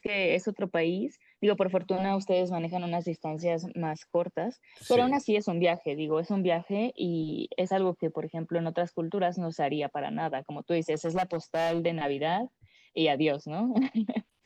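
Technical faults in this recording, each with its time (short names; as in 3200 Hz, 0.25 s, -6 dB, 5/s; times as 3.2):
10.93–11.86 clipped -23.5 dBFS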